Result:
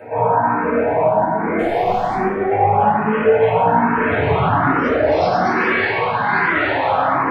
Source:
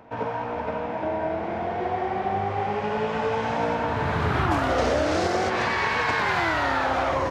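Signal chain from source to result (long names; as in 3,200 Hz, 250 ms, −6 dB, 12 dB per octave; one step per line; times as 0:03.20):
high-pass filter 140 Hz 12 dB per octave
gate on every frequency bin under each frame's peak −25 dB strong
in parallel at −1 dB: speech leveller
on the sum: brickwall limiter −19 dBFS, peak gain reduction 11 dB
0:01.58–0:02.14: hard clipping −27 dBFS, distortion −19 dB
0:05.85–0:06.26: high-frequency loss of the air 340 metres
tape delay 129 ms, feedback 88%, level −13.5 dB, low-pass 4,600 Hz
rectangular room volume 390 cubic metres, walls mixed, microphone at 5.1 metres
frequency shifter mixed with the dry sound +1.2 Hz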